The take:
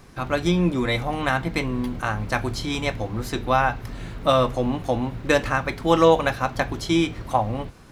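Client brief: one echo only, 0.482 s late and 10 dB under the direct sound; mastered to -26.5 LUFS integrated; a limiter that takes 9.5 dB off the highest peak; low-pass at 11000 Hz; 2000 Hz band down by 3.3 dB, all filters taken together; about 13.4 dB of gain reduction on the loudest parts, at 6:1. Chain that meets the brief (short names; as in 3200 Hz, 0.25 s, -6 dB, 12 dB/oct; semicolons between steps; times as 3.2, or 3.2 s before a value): LPF 11000 Hz; bell 2000 Hz -4.5 dB; compressor 6:1, threshold -26 dBFS; limiter -23 dBFS; echo 0.482 s -10 dB; gain +7 dB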